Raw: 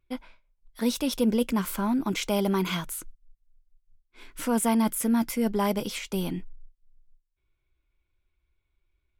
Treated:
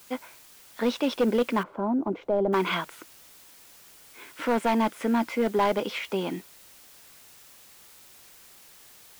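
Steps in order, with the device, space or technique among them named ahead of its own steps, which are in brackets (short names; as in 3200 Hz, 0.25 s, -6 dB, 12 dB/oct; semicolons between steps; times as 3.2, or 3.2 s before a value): aircraft radio (BPF 350–2600 Hz; hard clip -24 dBFS, distortion -13 dB; white noise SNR 23 dB); 1.63–2.53 EQ curve 660 Hz 0 dB, 2100 Hz -21 dB, 11000 Hz -28 dB; gain +6.5 dB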